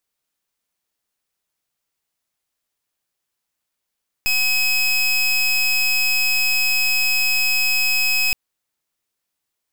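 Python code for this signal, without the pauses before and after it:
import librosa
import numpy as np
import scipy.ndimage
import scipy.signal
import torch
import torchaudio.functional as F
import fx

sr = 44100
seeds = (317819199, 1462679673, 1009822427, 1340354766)

y = fx.pulse(sr, length_s=4.07, hz=2550.0, level_db=-18.0, duty_pct=27)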